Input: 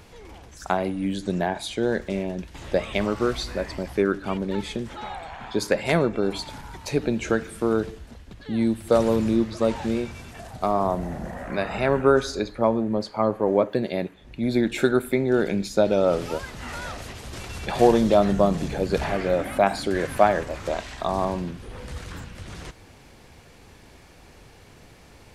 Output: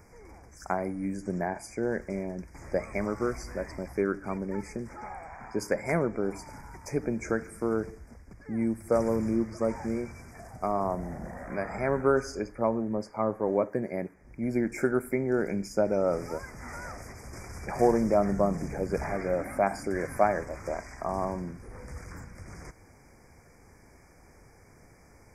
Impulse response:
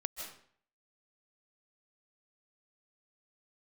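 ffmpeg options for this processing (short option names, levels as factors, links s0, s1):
-af "asuperstop=centerf=3400:order=20:qfactor=1.4,volume=0.501"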